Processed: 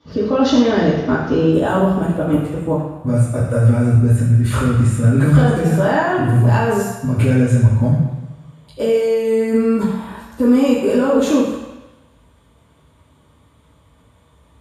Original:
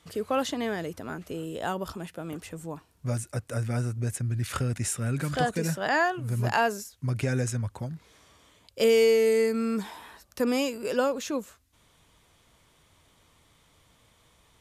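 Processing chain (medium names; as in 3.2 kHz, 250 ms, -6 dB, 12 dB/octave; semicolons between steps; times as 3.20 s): resonant high shelf 7 kHz -9 dB, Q 3, from 1.53 s +6.5 dB; level held to a coarse grid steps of 18 dB; reverberation RT60 1.1 s, pre-delay 3 ms, DRR -9.5 dB; trim +2.5 dB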